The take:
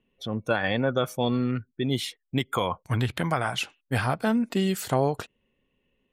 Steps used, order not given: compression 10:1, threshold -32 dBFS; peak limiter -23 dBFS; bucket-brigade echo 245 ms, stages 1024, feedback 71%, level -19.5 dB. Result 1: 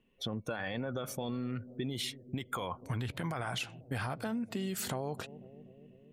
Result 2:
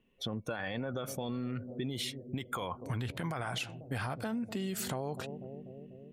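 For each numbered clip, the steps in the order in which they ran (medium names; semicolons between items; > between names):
peak limiter > bucket-brigade echo > compression; bucket-brigade echo > peak limiter > compression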